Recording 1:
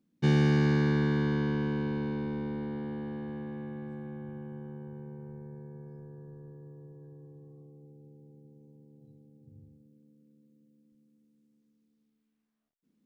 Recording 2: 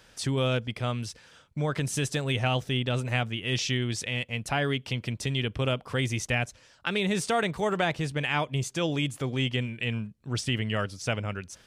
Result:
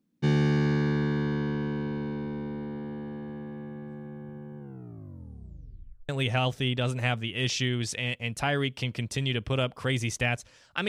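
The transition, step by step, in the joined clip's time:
recording 1
4.58 tape stop 1.51 s
6.09 switch to recording 2 from 2.18 s

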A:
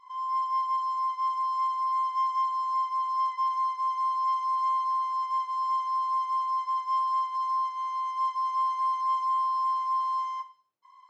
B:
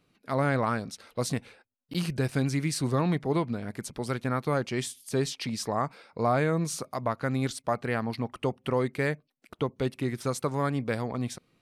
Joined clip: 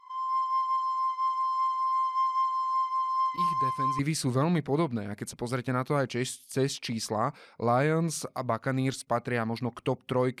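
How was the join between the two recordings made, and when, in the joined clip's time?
A
3.09 add B from 1.66 s 0.90 s -10 dB
3.99 switch to B from 2.56 s

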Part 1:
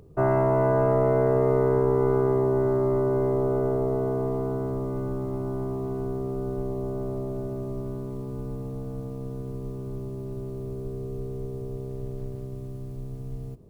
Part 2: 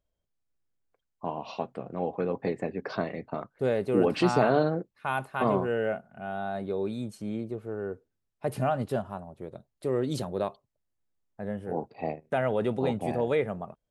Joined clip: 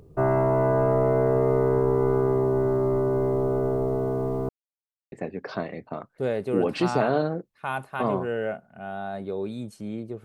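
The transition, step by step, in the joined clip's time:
part 1
4.49–5.12 mute
5.12 switch to part 2 from 2.53 s

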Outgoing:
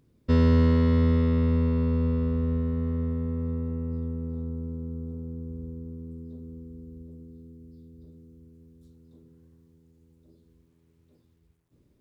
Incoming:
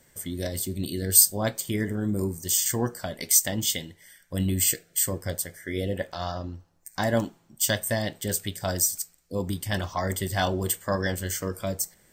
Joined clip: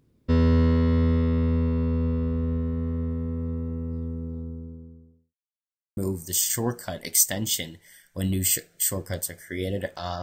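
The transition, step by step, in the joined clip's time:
outgoing
4.1–5.35 studio fade out
5.35–5.97 mute
5.97 switch to incoming from 2.13 s

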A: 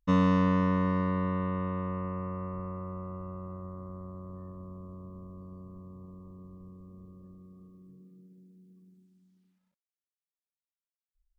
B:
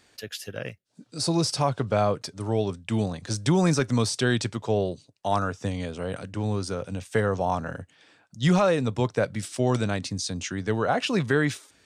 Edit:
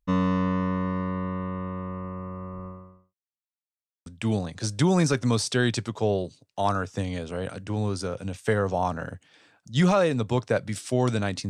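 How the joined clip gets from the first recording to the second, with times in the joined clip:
A
2.66–3.15 fade out quadratic
3.15–4.06 mute
4.06 switch to B from 2.73 s

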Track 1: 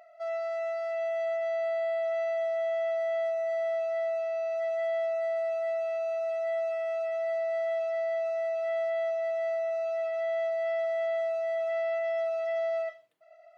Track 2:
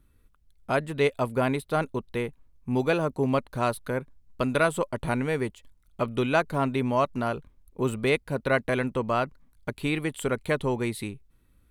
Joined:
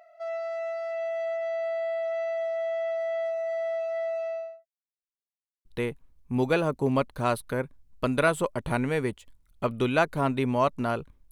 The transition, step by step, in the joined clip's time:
track 1
4.26–4.66 studio fade out
4.66–5.65 mute
5.65 switch to track 2 from 2.02 s

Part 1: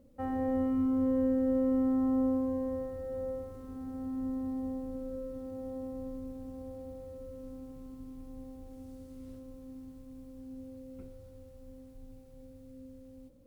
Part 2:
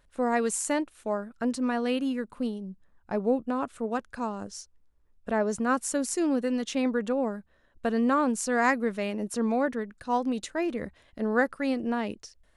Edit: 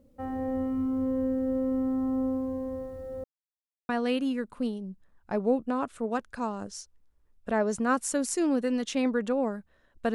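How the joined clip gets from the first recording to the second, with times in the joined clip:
part 1
3.24–3.89 mute
3.89 switch to part 2 from 1.69 s

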